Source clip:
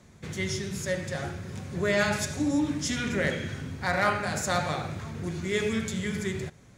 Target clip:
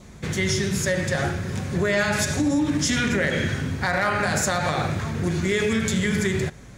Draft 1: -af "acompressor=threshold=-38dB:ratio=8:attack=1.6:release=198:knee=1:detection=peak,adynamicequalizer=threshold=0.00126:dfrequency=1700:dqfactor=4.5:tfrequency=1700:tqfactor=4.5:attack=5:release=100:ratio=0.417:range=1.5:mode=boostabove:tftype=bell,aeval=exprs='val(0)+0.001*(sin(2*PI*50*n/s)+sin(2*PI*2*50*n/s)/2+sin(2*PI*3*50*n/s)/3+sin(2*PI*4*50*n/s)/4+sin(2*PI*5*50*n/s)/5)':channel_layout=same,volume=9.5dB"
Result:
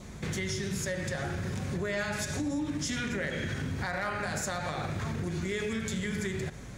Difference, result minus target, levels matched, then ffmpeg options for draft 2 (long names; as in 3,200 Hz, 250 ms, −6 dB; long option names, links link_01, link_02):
downward compressor: peak gain reduction +10.5 dB
-af "acompressor=threshold=-26dB:ratio=8:attack=1.6:release=198:knee=1:detection=peak,adynamicequalizer=threshold=0.00126:dfrequency=1700:dqfactor=4.5:tfrequency=1700:tqfactor=4.5:attack=5:release=100:ratio=0.417:range=1.5:mode=boostabove:tftype=bell,aeval=exprs='val(0)+0.001*(sin(2*PI*50*n/s)+sin(2*PI*2*50*n/s)/2+sin(2*PI*3*50*n/s)/3+sin(2*PI*4*50*n/s)/4+sin(2*PI*5*50*n/s)/5)':channel_layout=same,volume=9.5dB"